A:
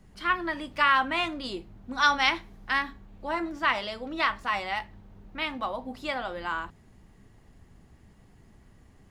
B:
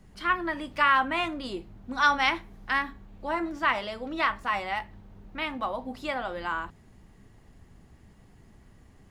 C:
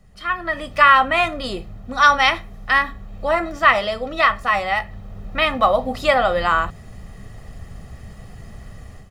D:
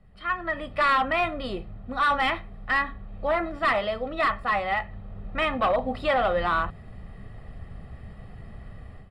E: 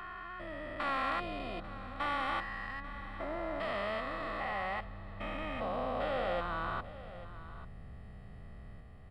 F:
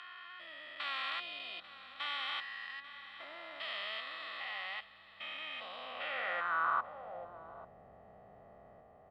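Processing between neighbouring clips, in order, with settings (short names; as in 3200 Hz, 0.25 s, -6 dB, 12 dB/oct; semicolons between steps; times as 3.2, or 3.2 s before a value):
dynamic EQ 4500 Hz, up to -6 dB, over -44 dBFS, Q 0.92; gain +1 dB
comb 1.6 ms, depth 59%; AGC gain up to 14.5 dB
overloaded stage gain 14 dB; running mean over 7 samples; gain -4 dB
stepped spectrum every 0.4 s; echo 0.841 s -15.5 dB; gain -6 dB
band-pass sweep 3400 Hz -> 680 Hz, 5.79–7.27; gain +8 dB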